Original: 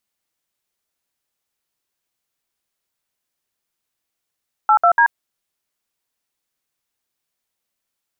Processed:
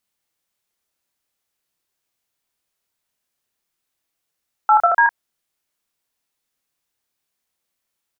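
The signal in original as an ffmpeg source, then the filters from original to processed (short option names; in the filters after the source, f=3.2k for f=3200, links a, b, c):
-f lavfi -i "aevalsrc='0.251*clip(min(mod(t,0.145),0.083-mod(t,0.145))/0.002,0,1)*(eq(floor(t/0.145),0)*(sin(2*PI*852*mod(t,0.145))+sin(2*PI*1336*mod(t,0.145)))+eq(floor(t/0.145),1)*(sin(2*PI*697*mod(t,0.145))+sin(2*PI*1336*mod(t,0.145)))+eq(floor(t/0.145),2)*(sin(2*PI*941*mod(t,0.145))+sin(2*PI*1633*mod(t,0.145))))':d=0.435:s=44100"
-filter_complex "[0:a]asplit=2[a][b];[b]adelay=28,volume=-5dB[c];[a][c]amix=inputs=2:normalize=0"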